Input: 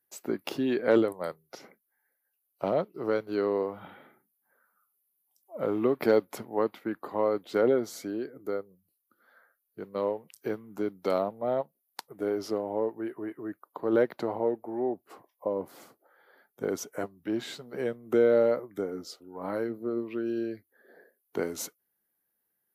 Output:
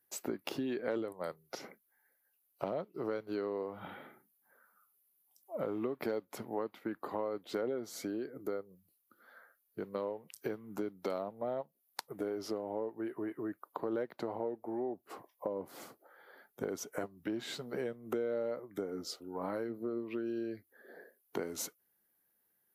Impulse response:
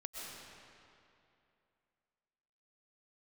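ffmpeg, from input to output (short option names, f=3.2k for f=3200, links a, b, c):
-af "acompressor=threshold=-38dB:ratio=4,volume=2.5dB"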